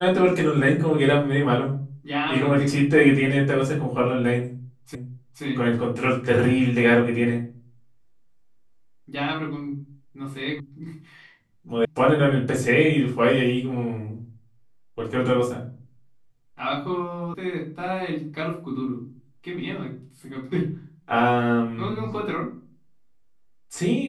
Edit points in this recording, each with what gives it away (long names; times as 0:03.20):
0:04.95: the same again, the last 0.48 s
0:10.60: cut off before it has died away
0:11.85: cut off before it has died away
0:17.34: cut off before it has died away